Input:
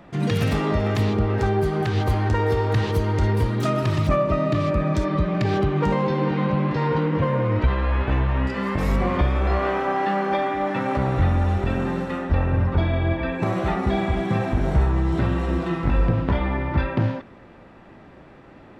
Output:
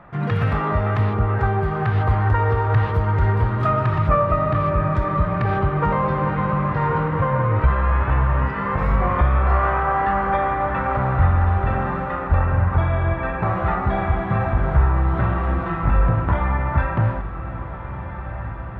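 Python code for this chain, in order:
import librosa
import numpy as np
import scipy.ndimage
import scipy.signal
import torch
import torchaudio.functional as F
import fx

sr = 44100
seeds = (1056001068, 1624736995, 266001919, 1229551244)

p1 = fx.curve_eq(x, sr, hz=(120.0, 280.0, 1300.0, 6400.0), db=(0, -10, 5, -23))
p2 = p1 + fx.echo_diffused(p1, sr, ms=1521, feedback_pct=55, wet_db=-11.5, dry=0)
y = p2 * 10.0 ** (3.0 / 20.0)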